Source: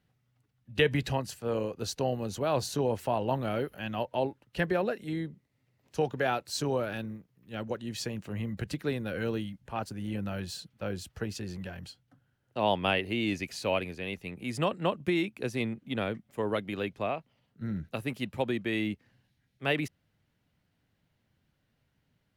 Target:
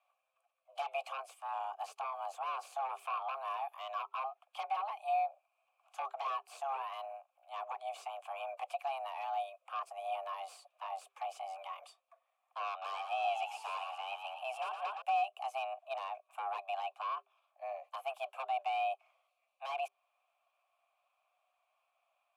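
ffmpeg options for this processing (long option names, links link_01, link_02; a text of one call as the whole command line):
ffmpeg -i in.wav -filter_complex "[0:a]highpass=510,highshelf=frequency=6300:width_type=q:width=1.5:gain=11,acompressor=threshold=-39dB:ratio=2,aeval=exprs='0.1*sin(PI/2*5.01*val(0)/0.1)':channel_layout=same,afreqshift=400,asplit=3[link_01][link_02][link_03];[link_01]bandpass=frequency=730:width_type=q:width=8,volume=0dB[link_04];[link_02]bandpass=frequency=1090:width_type=q:width=8,volume=-6dB[link_05];[link_03]bandpass=frequency=2440:width_type=q:width=8,volume=-9dB[link_06];[link_04][link_05][link_06]amix=inputs=3:normalize=0,asettb=1/sr,asplit=3[link_07][link_08][link_09];[link_07]atrim=end=12.704[link_10];[link_08]atrim=start=12.7:end=15.02,asetpts=PTS-STARTPTS,afade=type=in:duration=0.004:curve=qsin,afade=type=out:start_time=2.316:duration=0.004:curve=qsin,asplit=6[link_11][link_12][link_13][link_14][link_15][link_16];[link_12]adelay=116,afreqshift=51,volume=-7dB[link_17];[link_13]adelay=232,afreqshift=102,volume=-14.1dB[link_18];[link_14]adelay=348,afreqshift=153,volume=-21.3dB[link_19];[link_15]adelay=464,afreqshift=204,volume=-28.4dB[link_20];[link_16]adelay=580,afreqshift=255,volume=-35.5dB[link_21];[link_11][link_17][link_18][link_19][link_20][link_21]amix=inputs=6:normalize=0,atrim=end_sample=102312[link_22];[link_09]atrim=start=15.016[link_23];[link_10][link_22]acrossfade=duration=0.004:curve1=hsin:curve2=qsin[link_24];[link_24][link_23]acrossfade=duration=0.004:curve1=qsin:curve2=hsin,volume=-4dB" out.wav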